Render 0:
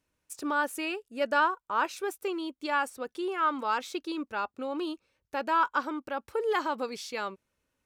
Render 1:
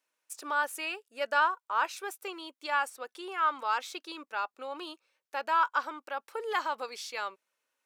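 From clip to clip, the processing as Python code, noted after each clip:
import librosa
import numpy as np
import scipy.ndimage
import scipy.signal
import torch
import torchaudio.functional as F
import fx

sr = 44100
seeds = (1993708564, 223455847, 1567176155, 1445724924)

y = scipy.signal.sosfilt(scipy.signal.butter(2, 650.0, 'highpass', fs=sr, output='sos'), x)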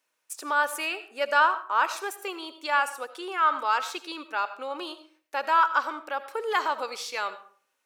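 y = fx.rev_freeverb(x, sr, rt60_s=0.46, hf_ratio=0.65, predelay_ms=40, drr_db=12.0)
y = F.gain(torch.from_numpy(y), 5.0).numpy()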